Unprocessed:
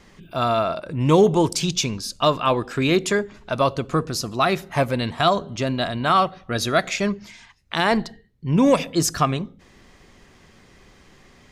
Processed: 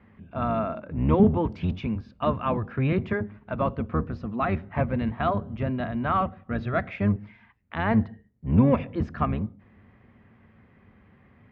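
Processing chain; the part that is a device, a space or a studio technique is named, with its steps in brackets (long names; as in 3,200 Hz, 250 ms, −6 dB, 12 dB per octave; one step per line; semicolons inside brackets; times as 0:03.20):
sub-octave bass pedal (sub-octave generator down 1 octave, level +1 dB; loudspeaker in its box 60–2,300 Hz, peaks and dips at 100 Hz +5 dB, 220 Hz +9 dB, 350 Hz −4 dB)
level −7 dB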